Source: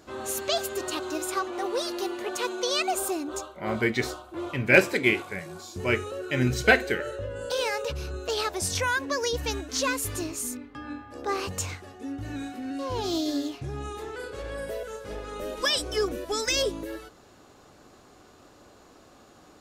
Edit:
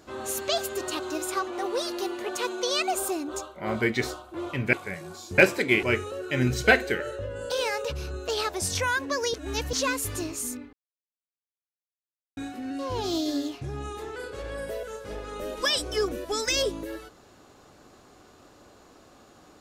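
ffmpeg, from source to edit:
ffmpeg -i in.wav -filter_complex "[0:a]asplit=8[link_01][link_02][link_03][link_04][link_05][link_06][link_07][link_08];[link_01]atrim=end=4.732[link_09];[link_02]atrim=start=5.178:end=5.832[link_10];[link_03]atrim=start=4.728:end=5.182[link_11];[link_04]atrim=start=5.828:end=9.342[link_12];[link_05]atrim=start=9.338:end=9.732,asetpts=PTS-STARTPTS,areverse[link_13];[link_06]atrim=start=9.728:end=10.73,asetpts=PTS-STARTPTS,afade=type=out:start_time=0.998:duration=0.004:curve=hsin[link_14];[link_07]atrim=start=10.73:end=12.37,asetpts=PTS-STARTPTS,volume=0[link_15];[link_08]atrim=start=12.37,asetpts=PTS-STARTPTS,afade=type=in:duration=0.004:curve=hsin[link_16];[link_09][link_10]acrossfade=duration=0.004:curve1=hsin:curve2=hsin[link_17];[link_17][link_11]acrossfade=duration=0.004:curve1=hsin:curve2=hsin[link_18];[link_18][link_12]acrossfade=duration=0.004:curve1=hsin:curve2=hsin[link_19];[link_19][link_13]acrossfade=duration=0.004:curve1=hsin:curve2=hsin[link_20];[link_14][link_15][link_16]concat=n=3:v=0:a=1[link_21];[link_20][link_21]acrossfade=duration=0.004:curve1=hsin:curve2=hsin" out.wav

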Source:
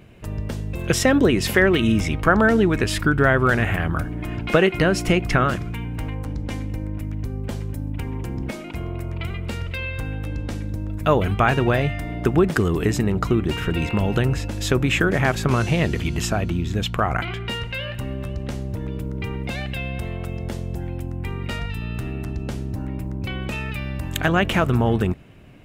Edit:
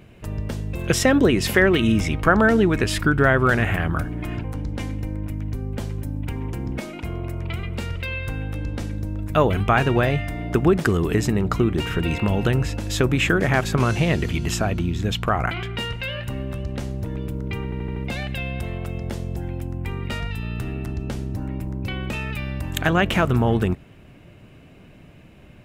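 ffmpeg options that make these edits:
ffmpeg -i in.wav -filter_complex "[0:a]asplit=6[link_01][link_02][link_03][link_04][link_05][link_06];[link_01]atrim=end=4.442[link_07];[link_02]atrim=start=6.148:end=19.432[link_08];[link_03]atrim=start=19.348:end=19.432[link_09];[link_04]atrim=start=19.348:end=19.432[link_10];[link_05]atrim=start=19.348:end=19.432[link_11];[link_06]atrim=start=19.348[link_12];[link_07][link_08]acrossfade=duration=0.004:curve1=hsin:curve2=hsin[link_13];[link_13][link_09]acrossfade=duration=0.004:curve1=hsin:curve2=hsin[link_14];[link_14][link_10]acrossfade=duration=0.004:curve1=hsin:curve2=hsin[link_15];[link_15][link_11]acrossfade=duration=0.004:curve1=hsin:curve2=hsin[link_16];[link_16][link_12]acrossfade=duration=0.004:curve1=hsin:curve2=hsin" out.wav

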